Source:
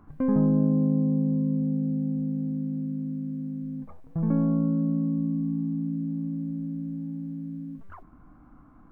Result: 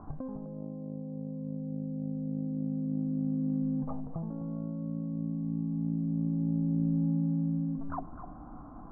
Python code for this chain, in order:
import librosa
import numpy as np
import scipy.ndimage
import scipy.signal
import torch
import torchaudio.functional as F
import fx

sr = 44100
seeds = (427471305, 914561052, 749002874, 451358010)

p1 = scipy.signal.sosfilt(scipy.signal.butter(4, 1300.0, 'lowpass', fs=sr, output='sos'), x)
p2 = fx.peak_eq(p1, sr, hz=730.0, db=8.5, octaves=0.78)
p3 = fx.over_compress(p2, sr, threshold_db=-33.0, ratio=-1.0)
y = p3 + fx.echo_single(p3, sr, ms=255, db=-10.5, dry=0)